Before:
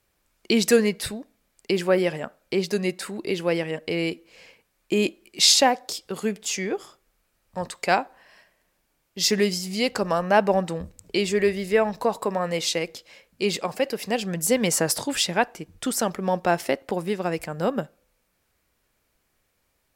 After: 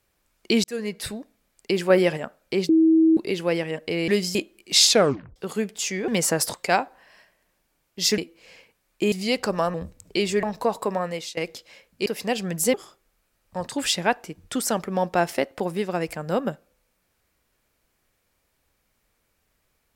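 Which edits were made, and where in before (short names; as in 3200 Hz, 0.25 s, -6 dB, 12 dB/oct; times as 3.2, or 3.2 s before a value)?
0.64–1.15 fade in
1.9–2.17 gain +3 dB
2.69–3.17 bleep 322 Hz -13 dBFS
4.08–5.02 swap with 9.37–9.64
5.56 tape stop 0.47 s
6.75–7.73 swap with 14.57–15.03
10.26–10.73 cut
11.42–11.83 cut
12.37–12.77 fade out, to -19 dB
13.46–13.89 cut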